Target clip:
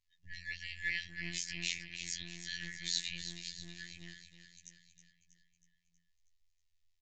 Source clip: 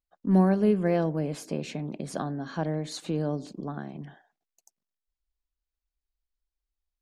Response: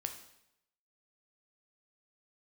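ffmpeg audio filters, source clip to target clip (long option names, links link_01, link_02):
-filter_complex "[0:a]afftfilt=real='re*(1-between(b*sr/4096,150,1700))':imag='im*(1-between(b*sr/4096,150,1700))':win_size=4096:overlap=0.75,acrossover=split=130[link_01][link_02];[link_01]acompressor=threshold=-59dB:ratio=8[link_03];[link_03][link_02]amix=inputs=2:normalize=0,asplit=2[link_04][link_05];[link_05]alimiter=level_in=11.5dB:limit=-24dB:level=0:latency=1:release=38,volume=-11.5dB,volume=1dB[link_06];[link_04][link_06]amix=inputs=2:normalize=0,flanger=delay=6.6:depth=4.9:regen=30:speed=0.69:shape=sinusoidal,aecho=1:1:320|640|960|1280|1600|1920:0.316|0.177|0.0992|0.0555|0.0311|0.0174,afftfilt=real='hypot(re,im)*cos(PI*b)':imag='0':win_size=2048:overlap=0.75,acrossover=split=1600[link_07][link_08];[link_07]aeval=exprs='max(val(0),0)':channel_layout=same[link_09];[link_09][link_08]amix=inputs=2:normalize=0,aresample=16000,aresample=44100,volume=8dB"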